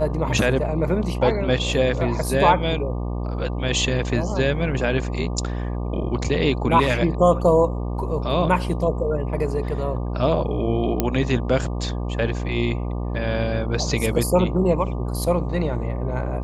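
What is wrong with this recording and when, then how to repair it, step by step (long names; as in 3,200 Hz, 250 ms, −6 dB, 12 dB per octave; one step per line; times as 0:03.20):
mains buzz 60 Hz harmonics 20 −26 dBFS
0:11.00: click −5 dBFS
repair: click removal
hum removal 60 Hz, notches 20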